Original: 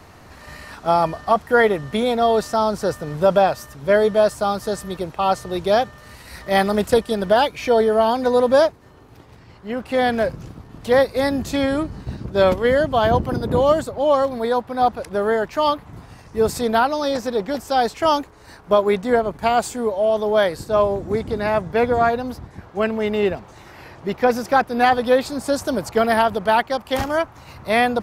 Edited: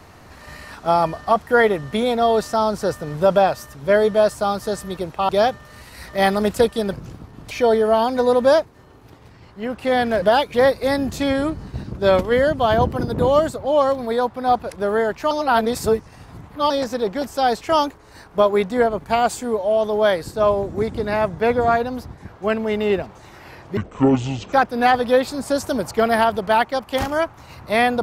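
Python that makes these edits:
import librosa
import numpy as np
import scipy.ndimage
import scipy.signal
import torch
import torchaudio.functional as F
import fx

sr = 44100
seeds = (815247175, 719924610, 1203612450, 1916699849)

y = fx.edit(x, sr, fx.cut(start_s=5.29, length_s=0.33),
    fx.swap(start_s=7.26, length_s=0.32, other_s=10.29, other_length_s=0.58),
    fx.reverse_span(start_s=15.64, length_s=1.39),
    fx.speed_span(start_s=24.1, length_s=0.41, speed=0.54), tone=tone)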